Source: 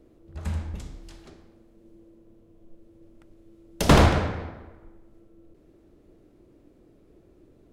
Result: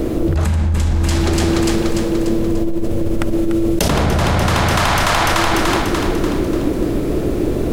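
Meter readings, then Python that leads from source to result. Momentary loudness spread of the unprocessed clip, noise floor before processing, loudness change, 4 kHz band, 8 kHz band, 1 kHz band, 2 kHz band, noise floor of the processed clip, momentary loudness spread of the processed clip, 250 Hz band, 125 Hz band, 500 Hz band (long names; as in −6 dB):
21 LU, −58 dBFS, +6.0 dB, +13.5 dB, +15.0 dB, +12.5 dB, +14.0 dB, −19 dBFS, 5 LU, +15.0 dB, +11.5 dB, +13.0 dB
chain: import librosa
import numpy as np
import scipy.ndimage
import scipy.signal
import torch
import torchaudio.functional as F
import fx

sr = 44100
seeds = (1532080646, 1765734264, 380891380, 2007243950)

y = fx.high_shelf(x, sr, hz=9800.0, db=4.5)
y = fx.echo_split(y, sr, split_hz=750.0, low_ms=150, high_ms=293, feedback_pct=52, wet_db=-5.5)
y = fx.env_flatten(y, sr, amount_pct=100)
y = F.gain(torch.from_numpy(y), -3.0).numpy()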